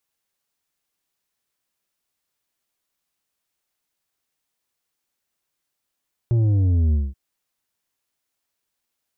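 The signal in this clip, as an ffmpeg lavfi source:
-f lavfi -i "aevalsrc='0.158*clip((0.83-t)/0.21,0,1)*tanh(2.24*sin(2*PI*120*0.83/log(65/120)*(exp(log(65/120)*t/0.83)-1)))/tanh(2.24)':d=0.83:s=44100"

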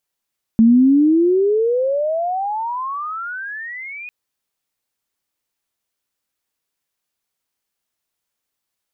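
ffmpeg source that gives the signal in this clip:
-f lavfi -i "aevalsrc='pow(10,(-7-22.5*t/3.5)/20)*sin(2*PI*220*3.5/log(2500/220)*(exp(log(2500/220)*t/3.5)-1))':d=3.5:s=44100"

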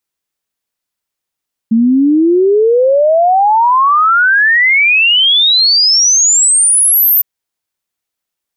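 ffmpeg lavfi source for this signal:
-f lavfi -i "aevalsrc='0.501*clip(min(t,5.51-t)/0.01,0,1)*sin(2*PI*220*5.51/log(14000/220)*(exp(log(14000/220)*t/5.51)-1))':d=5.51:s=44100"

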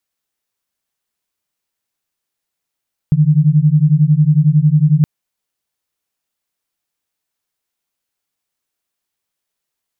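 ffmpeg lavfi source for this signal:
-f lavfi -i "aevalsrc='0.282*(sin(2*PI*146*t)+sin(2*PI*157*t))':d=1.92:s=44100"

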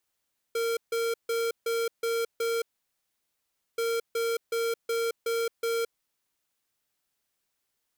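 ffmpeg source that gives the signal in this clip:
-f lavfi -i "aevalsrc='0.0398*(2*lt(mod(461*t,1),0.5)-1)*clip(min(mod(mod(t,3.23),0.37),0.22-mod(mod(t,3.23),0.37))/0.005,0,1)*lt(mod(t,3.23),2.22)':d=6.46:s=44100"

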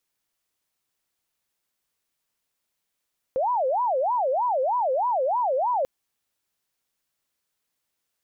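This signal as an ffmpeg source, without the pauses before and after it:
-f lavfi -i "aevalsrc='0.0944*sin(2*PI*(753.5*t-243.5/(2*PI*3.2)*sin(2*PI*3.2*t)))':d=2.49:s=44100"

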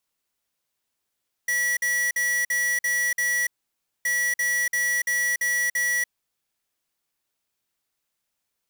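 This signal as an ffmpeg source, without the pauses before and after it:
-f lavfi -i "aevalsrc='0.0668*(2*lt(mod(1940*t,1),0.5)-1)*clip(min(mod(mod(t,2.57),0.34),0.29-mod(mod(t,2.57),0.34))/0.005,0,1)*lt(mod(t,2.57),2.04)':d=5.14:s=44100"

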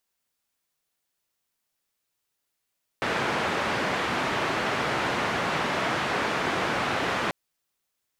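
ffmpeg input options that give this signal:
-f lavfi -i "anoisesrc=c=white:d=4.29:r=44100:seed=1,highpass=f=110,lowpass=f=1700,volume=-11.2dB"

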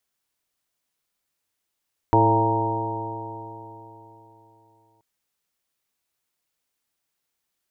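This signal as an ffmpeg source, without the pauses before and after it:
-f lavfi -i "aevalsrc='0.1*pow(10,-3*t/3.59)*sin(2*PI*109.12*t)+0.02*pow(10,-3*t/3.59)*sin(2*PI*218.96*t)+0.1*pow(10,-3*t/3.59)*sin(2*PI*330.22*t)+0.075*pow(10,-3*t/3.59)*sin(2*PI*443.61*t)+0.0398*pow(10,-3*t/3.59)*sin(2*PI*559.79*t)+0.0562*pow(10,-3*t/3.59)*sin(2*PI*679.4*t)+0.0596*pow(10,-3*t/3.59)*sin(2*PI*803.07*t)+0.158*pow(10,-3*t/3.59)*sin(2*PI*931.37*t)':d=2.88:s=44100"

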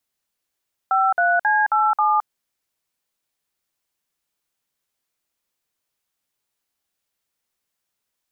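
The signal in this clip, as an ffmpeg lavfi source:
-f lavfi -i "aevalsrc='0.133*clip(min(mod(t,0.269),0.216-mod(t,0.269))/0.002,0,1)*(eq(floor(t/0.269),0)*(sin(2*PI*770*mod(t,0.269))+sin(2*PI*1336*mod(t,0.269)))+eq(floor(t/0.269),1)*(sin(2*PI*697*mod(t,0.269))+sin(2*PI*1477*mod(t,0.269)))+eq(floor(t/0.269),2)*(sin(2*PI*852*mod(t,0.269))+sin(2*PI*1633*mod(t,0.269)))+eq(floor(t/0.269),3)*(sin(2*PI*852*mod(t,0.269))+sin(2*PI*1336*mod(t,0.269)))+eq(floor(t/0.269),4)*(sin(2*PI*852*mod(t,0.269))+sin(2*PI*1209*mod(t,0.269))))':d=1.345:s=44100"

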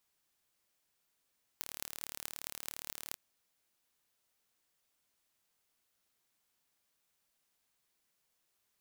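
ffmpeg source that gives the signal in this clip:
-f lavfi -i "aevalsrc='0.316*eq(mod(n,1185),0)*(0.5+0.5*eq(mod(n,9480),0))':d=1.54:s=44100"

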